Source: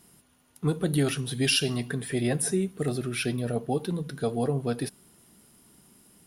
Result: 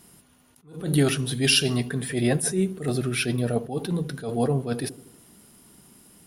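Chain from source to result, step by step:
delay with a low-pass on its return 80 ms, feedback 54%, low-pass 590 Hz, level −15.5 dB
level that may rise only so fast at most 140 dB per second
level +4.5 dB

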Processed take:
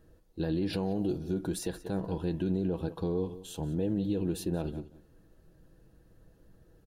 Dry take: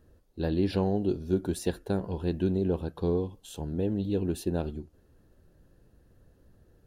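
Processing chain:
0:00.73–0:01.18: high-shelf EQ 8,500 Hz +9.5 dB
repeating echo 181 ms, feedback 18%, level −18 dB
brickwall limiter −23 dBFS, peak gain reduction 8.5 dB
comb filter 6.2 ms, depth 39%

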